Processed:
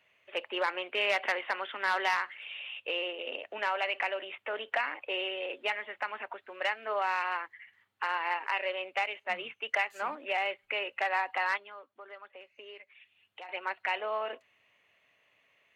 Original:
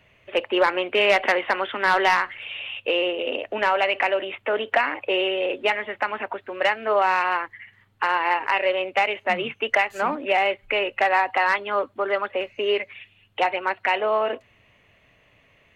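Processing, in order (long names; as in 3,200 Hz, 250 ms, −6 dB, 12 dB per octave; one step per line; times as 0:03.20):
0:11.57–0:13.49: downward compressor 2 to 1, threshold −45 dBFS, peak gain reduction 15.5 dB
high-pass filter 800 Hz 6 dB per octave
0:09.04–0:10.01: multiband upward and downward expander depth 40%
level −8 dB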